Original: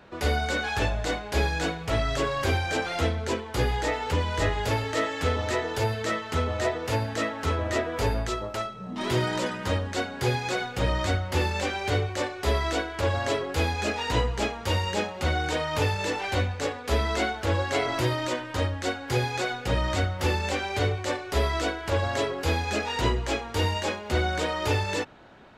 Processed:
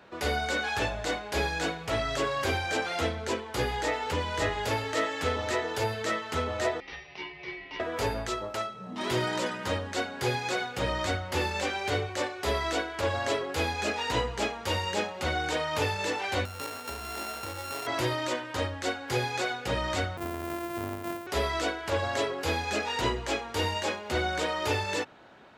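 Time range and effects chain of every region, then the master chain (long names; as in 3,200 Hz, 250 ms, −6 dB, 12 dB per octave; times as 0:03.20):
0:06.80–0:07.80: Chebyshev band-pass filter 940–4,900 Hz, order 5 + tilt shelving filter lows +9.5 dB, about 1,200 Hz + ring modulation 950 Hz
0:16.45–0:17.87: samples sorted by size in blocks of 32 samples + downward compressor 10 to 1, threshold −30 dBFS
0:20.17–0:21.27: samples sorted by size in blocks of 128 samples + parametric band 4,900 Hz −13 dB 2.1 octaves + downward compressor 4 to 1, threshold −27 dBFS
whole clip: high-pass filter 48 Hz; low-shelf EQ 190 Hz −8 dB; level −1 dB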